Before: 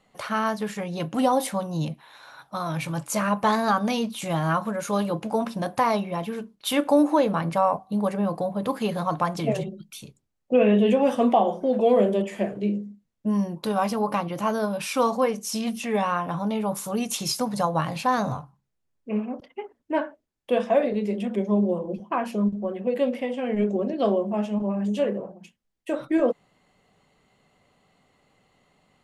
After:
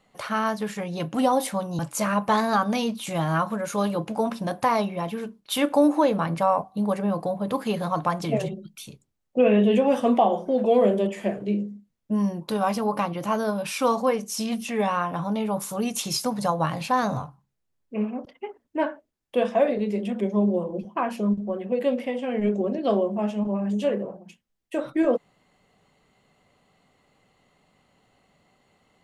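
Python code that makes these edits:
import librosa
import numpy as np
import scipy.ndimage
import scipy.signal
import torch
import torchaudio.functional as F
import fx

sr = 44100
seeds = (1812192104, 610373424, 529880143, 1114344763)

y = fx.edit(x, sr, fx.cut(start_s=1.79, length_s=1.15), tone=tone)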